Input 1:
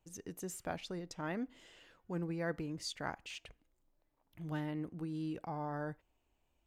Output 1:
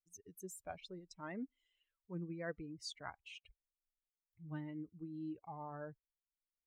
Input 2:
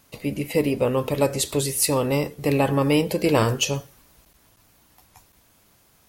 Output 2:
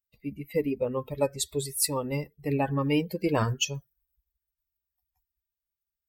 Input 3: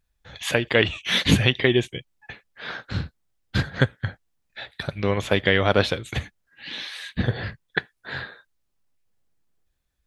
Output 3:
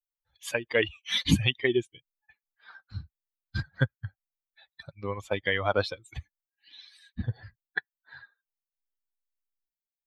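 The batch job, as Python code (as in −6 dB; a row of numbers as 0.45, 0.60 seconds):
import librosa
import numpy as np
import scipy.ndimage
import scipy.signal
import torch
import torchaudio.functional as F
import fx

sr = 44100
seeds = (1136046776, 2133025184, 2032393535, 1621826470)

y = fx.bin_expand(x, sr, power=2.0)
y = y * 10.0 ** (-2.5 / 20.0)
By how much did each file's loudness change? −6.0, −6.5, −5.5 LU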